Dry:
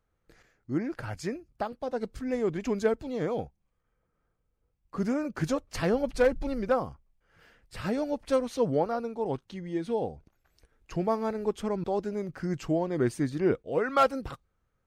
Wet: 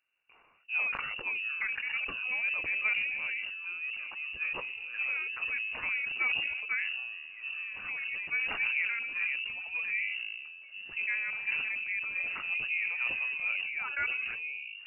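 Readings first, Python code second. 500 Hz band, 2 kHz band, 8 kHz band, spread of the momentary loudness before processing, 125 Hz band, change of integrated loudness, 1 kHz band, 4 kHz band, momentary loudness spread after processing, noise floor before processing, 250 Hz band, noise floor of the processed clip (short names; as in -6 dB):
-27.5 dB, +12.5 dB, under -30 dB, 10 LU, under -25 dB, -1.5 dB, -12.0 dB, +6.0 dB, 8 LU, -77 dBFS, under -25 dB, -51 dBFS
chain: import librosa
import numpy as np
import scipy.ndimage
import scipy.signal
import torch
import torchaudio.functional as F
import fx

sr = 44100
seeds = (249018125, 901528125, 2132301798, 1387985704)

y = scipy.signal.sosfilt(scipy.signal.butter(2, 44.0, 'highpass', fs=sr, output='sos'), x)
y = fx.rider(y, sr, range_db=10, speed_s=2.0)
y = fx.echo_pitch(y, sr, ms=379, semitones=-6, count=3, db_per_echo=-6.0)
y = fx.freq_invert(y, sr, carrier_hz=2800)
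y = fx.sustainer(y, sr, db_per_s=29.0)
y = y * librosa.db_to_amplitude(-7.5)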